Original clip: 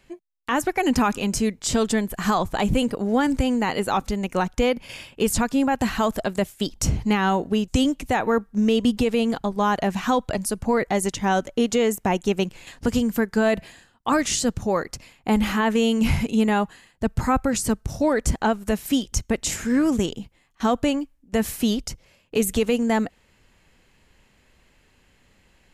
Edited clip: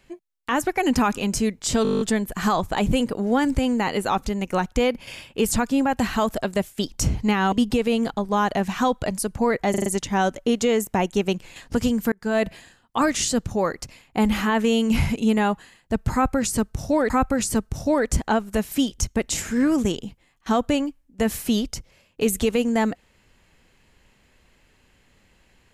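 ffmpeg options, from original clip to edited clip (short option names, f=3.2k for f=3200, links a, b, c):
-filter_complex "[0:a]asplit=17[a][b][c][d][e][f][g][h][i][j][k][l][m][n][o][p][q];[a]atrim=end=1.852[r];[b]atrim=start=1.828:end=1.852[s];[c]atrim=start=1.828:end=1.852[t];[d]atrim=start=1.828:end=1.852[u];[e]atrim=start=1.828:end=1.852[v];[f]atrim=start=1.828:end=1.852[w];[g]atrim=start=1.828:end=1.852[x];[h]atrim=start=1.828:end=1.852[y];[i]atrim=start=1.828:end=1.852[z];[j]atrim=start=1.828:end=7.342[aa];[k]atrim=start=8.788:end=11.012[ab];[l]atrim=start=10.968:end=11.012[ac];[m]atrim=start=10.968:end=11.012[ad];[n]atrim=start=10.968:end=11.012[ae];[o]atrim=start=10.968:end=13.23,asetpts=PTS-STARTPTS,afade=t=out:st=2.258:d=0.004:c=hsin[af];[p]atrim=start=13.23:end=18.212,asetpts=PTS-STARTPTS,afade=t=in:d=0.29[ag];[q]atrim=start=17.238[ah];[r][s]acrossfade=d=0.004:c1=hsin:c2=hsin[ai];[ai][t]acrossfade=d=0.004:c1=hsin:c2=hsin[aj];[aj][u]acrossfade=d=0.004:c1=hsin:c2=hsin[ak];[ak][v]acrossfade=d=0.004:c1=hsin:c2=hsin[al];[al][w]acrossfade=d=0.004:c1=hsin:c2=hsin[am];[am][x]acrossfade=d=0.004:c1=hsin:c2=hsin[an];[an][y]acrossfade=d=0.004:c1=hsin:c2=hsin[ao];[ao][z]acrossfade=d=0.004:c1=hsin:c2=hsin[ap];[ap][aa]acrossfade=d=0.004:c1=hsin:c2=hsin[aq];[aq][ab]acrossfade=d=0.004:c1=hsin:c2=hsin[ar];[ar][ac]acrossfade=d=0.004:c1=hsin:c2=hsin[as];[as][ad]acrossfade=d=0.004:c1=hsin:c2=hsin[at];[at][ae]acrossfade=d=0.004:c1=hsin:c2=hsin[au];[af][ag]concat=n=2:v=0:a=1[av];[au][av]acrossfade=d=0.004:c1=hsin:c2=hsin[aw];[aw][ah]acrossfade=d=0.004:c1=hsin:c2=hsin"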